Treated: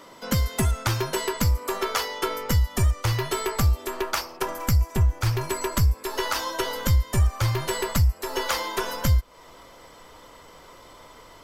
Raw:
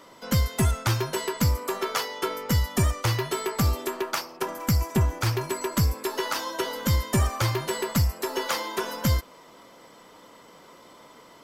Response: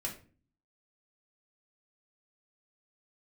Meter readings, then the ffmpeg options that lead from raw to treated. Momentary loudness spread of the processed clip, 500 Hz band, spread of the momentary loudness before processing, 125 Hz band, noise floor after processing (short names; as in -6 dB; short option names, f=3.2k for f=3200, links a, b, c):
5 LU, 0.0 dB, 6 LU, +2.0 dB, -49 dBFS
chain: -af "asubboost=boost=10.5:cutoff=61,acompressor=threshold=-23dB:ratio=3,volume=3dB"